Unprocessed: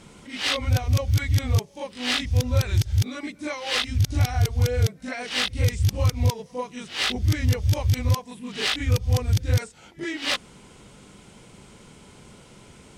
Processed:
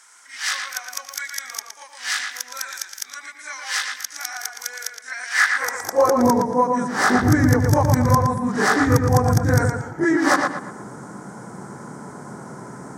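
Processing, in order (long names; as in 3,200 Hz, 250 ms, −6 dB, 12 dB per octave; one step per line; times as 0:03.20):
drawn EQ curve 110 Hz 0 dB, 180 Hz +6 dB, 290 Hz +12 dB, 560 Hz +7 dB, 1,700 Hz +4 dB, 2,700 Hz −25 dB, 5,700 Hz +6 dB
high-pass filter sweep 2,800 Hz → 130 Hz, 0:05.26–0:06.52
flat-topped bell 1,400 Hz +9.5 dB 2.4 octaves
feedback echo with a low-pass in the loop 116 ms, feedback 38%, low-pass 4,000 Hz, level −4 dB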